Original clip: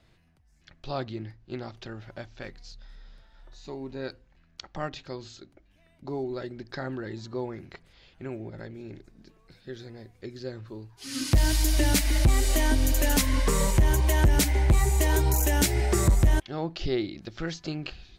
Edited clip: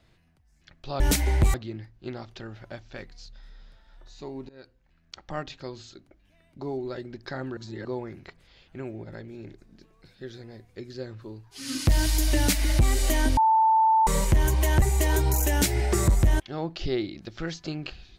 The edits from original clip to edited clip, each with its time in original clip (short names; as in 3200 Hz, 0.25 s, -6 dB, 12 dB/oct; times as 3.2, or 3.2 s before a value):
3.95–4.96 fade in equal-power, from -22 dB
7.03–7.31 reverse
12.83–13.53 bleep 886 Hz -16.5 dBFS
14.28–14.82 move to 1